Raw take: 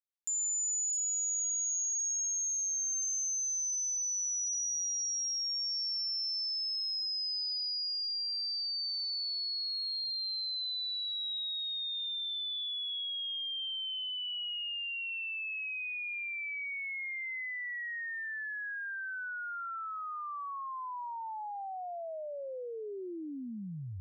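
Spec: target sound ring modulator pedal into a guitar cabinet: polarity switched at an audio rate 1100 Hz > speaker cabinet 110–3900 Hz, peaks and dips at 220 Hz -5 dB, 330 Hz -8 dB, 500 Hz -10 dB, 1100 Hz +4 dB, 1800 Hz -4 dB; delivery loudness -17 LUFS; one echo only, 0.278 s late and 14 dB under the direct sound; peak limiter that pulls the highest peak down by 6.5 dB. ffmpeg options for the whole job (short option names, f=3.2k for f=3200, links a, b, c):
-af "alimiter=level_in=12dB:limit=-24dB:level=0:latency=1,volume=-12dB,aecho=1:1:278:0.2,aeval=exprs='val(0)*sgn(sin(2*PI*1100*n/s))':c=same,highpass=110,equalizer=f=220:t=q:w=4:g=-5,equalizer=f=330:t=q:w=4:g=-8,equalizer=f=500:t=q:w=4:g=-10,equalizer=f=1.1k:t=q:w=4:g=4,equalizer=f=1.8k:t=q:w=4:g=-4,lowpass=f=3.9k:w=0.5412,lowpass=f=3.9k:w=1.3066,volume=23.5dB"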